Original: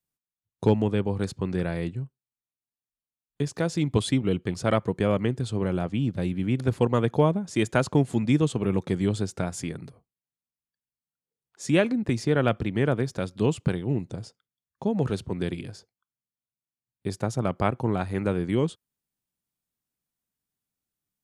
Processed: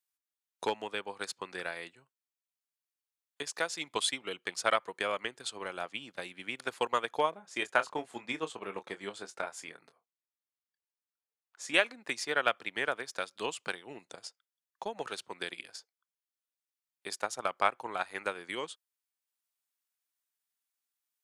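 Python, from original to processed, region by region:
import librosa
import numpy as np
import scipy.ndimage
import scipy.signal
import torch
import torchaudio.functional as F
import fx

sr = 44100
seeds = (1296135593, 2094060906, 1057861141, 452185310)

y = fx.chain(x, sr, fx.high_shelf(hz=2600.0, db=-10.0),
    fx.doubler(ms=25.0, db=-8.0), at=(7.3, 11.74))
y = scipy.signal.sosfilt(scipy.signal.butter(2, 1000.0, 'highpass', fs=sr, output='sos'), y)
y = fx.transient(y, sr, attack_db=5, sustain_db=-3)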